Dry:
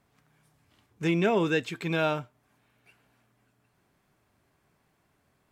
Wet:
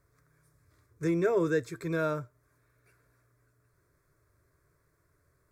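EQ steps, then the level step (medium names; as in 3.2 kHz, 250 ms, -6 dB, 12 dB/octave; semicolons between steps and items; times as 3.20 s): tone controls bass +7 dB, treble +1 dB; dynamic bell 2.4 kHz, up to -4 dB, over -43 dBFS, Q 0.73; static phaser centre 800 Hz, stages 6; 0.0 dB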